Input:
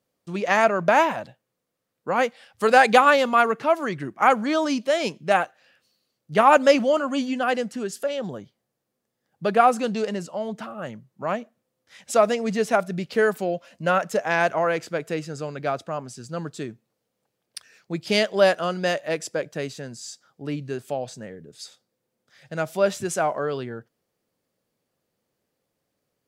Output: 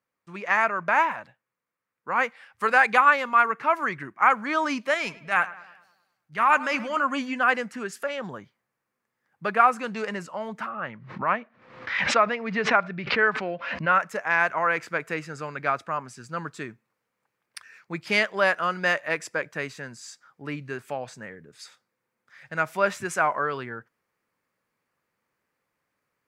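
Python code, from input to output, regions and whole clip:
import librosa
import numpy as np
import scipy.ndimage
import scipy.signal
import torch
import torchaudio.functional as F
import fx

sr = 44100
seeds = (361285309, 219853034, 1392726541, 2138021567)

y = fx.chain(x, sr, fx.peak_eq(hz=520.0, db=-6.0, octaves=2.5),
    fx.transient(attack_db=-7, sustain_db=2),
    fx.echo_filtered(ms=103, feedback_pct=53, hz=2700.0, wet_db=-16.5), at=(4.94, 6.97))
y = fx.chain(y, sr, fx.lowpass(hz=4200.0, slope=24),
    fx.pre_swell(db_per_s=72.0), at=(10.69, 13.92))
y = fx.band_shelf(y, sr, hz=1500.0, db=11.5, octaves=1.7)
y = fx.rider(y, sr, range_db=3, speed_s=0.5)
y = y * 10.0 ** (-8.0 / 20.0)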